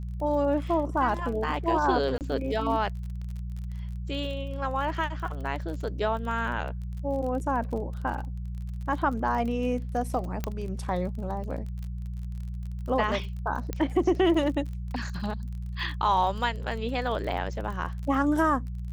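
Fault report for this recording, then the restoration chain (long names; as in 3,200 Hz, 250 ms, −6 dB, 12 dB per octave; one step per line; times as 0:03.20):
surface crackle 38 per second −36 dBFS
mains hum 60 Hz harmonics 3 −34 dBFS
0:02.18–0:02.21: drop-out 28 ms
0:10.44: click −15 dBFS
0:13.73: click −17 dBFS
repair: click removal
hum removal 60 Hz, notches 3
repair the gap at 0:02.18, 28 ms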